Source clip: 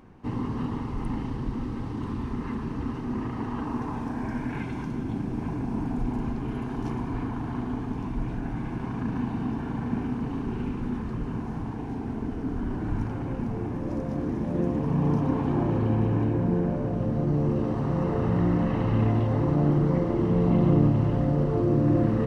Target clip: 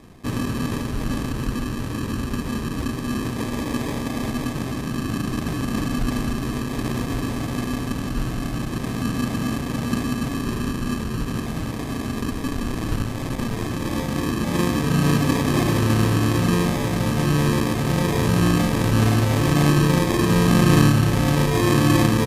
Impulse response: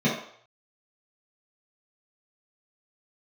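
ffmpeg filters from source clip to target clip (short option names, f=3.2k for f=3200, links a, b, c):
-filter_complex "[0:a]acrusher=samples=31:mix=1:aa=0.000001,asettb=1/sr,asplit=3[a][b][c];[a]atrim=end=12.354[d];[b]atrim=start=12.35:end=13.69,asetpts=PTS-STARTPTS,afade=t=in:d=0.004:c=qsin,afade=t=out:st=1.336:d=0.004:c=qsin,aeval=exprs='0.158*(cos(1*acos(clip(val(0)/0.158,-1,1)))-cos(1*PI/2))+0.01*(cos(3*acos(clip(val(0)/0.158,-1,1)))-cos(3*PI/2))+0.01*(cos(8*acos(clip(val(0)/0.158,-1,1)))-cos(8*PI/2))':c=same[e];[c]atrim=start=13.686[f];[d][e]acrossfade=d=0.004:c1=hsin:c2=qsin[g];[g][f]acrossfade=d=0.004:c1=qsin:c2=hsin,asplit=2[h][i];[i]aecho=0:1:307:0.0891[j];[h][j]amix=inputs=2:normalize=0,volume=5.5dB" -ar 32000 -c:a libmp3lame -b:a 64k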